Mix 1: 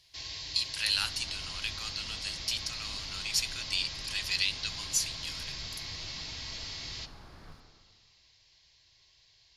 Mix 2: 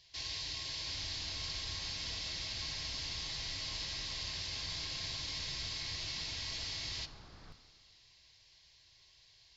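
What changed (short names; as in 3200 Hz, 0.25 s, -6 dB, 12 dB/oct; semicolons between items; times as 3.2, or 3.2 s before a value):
speech: muted; second sound: send -9.5 dB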